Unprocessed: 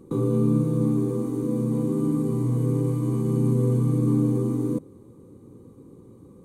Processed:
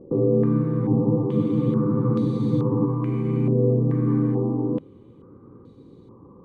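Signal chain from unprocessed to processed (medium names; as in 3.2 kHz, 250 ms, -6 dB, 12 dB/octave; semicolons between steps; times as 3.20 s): spectral freeze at 0.83 s, 2.04 s; step-sequenced low-pass 2.3 Hz 600–4000 Hz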